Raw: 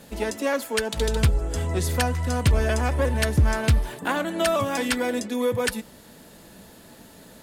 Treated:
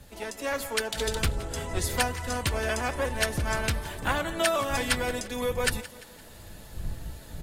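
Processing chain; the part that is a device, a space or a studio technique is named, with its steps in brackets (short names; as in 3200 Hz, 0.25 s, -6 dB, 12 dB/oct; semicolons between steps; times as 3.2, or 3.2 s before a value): low shelf 370 Hz -11.5 dB; feedback echo 0.172 s, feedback 45%, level -17 dB; smartphone video outdoors (wind noise 82 Hz -37 dBFS; AGC gain up to 5 dB; gain -6 dB; AAC 48 kbps 44100 Hz)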